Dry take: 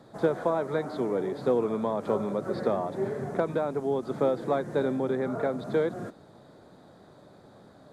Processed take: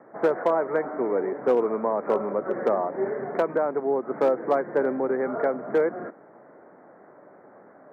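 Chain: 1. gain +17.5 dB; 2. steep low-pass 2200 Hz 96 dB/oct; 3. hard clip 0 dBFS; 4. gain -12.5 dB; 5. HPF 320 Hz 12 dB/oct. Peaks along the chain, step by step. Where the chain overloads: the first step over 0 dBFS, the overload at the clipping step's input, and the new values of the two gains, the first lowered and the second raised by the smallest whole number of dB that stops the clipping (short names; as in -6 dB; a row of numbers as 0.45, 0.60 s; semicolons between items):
+4.5, +5.0, 0.0, -12.5, -10.5 dBFS; step 1, 5.0 dB; step 1 +12.5 dB, step 4 -7.5 dB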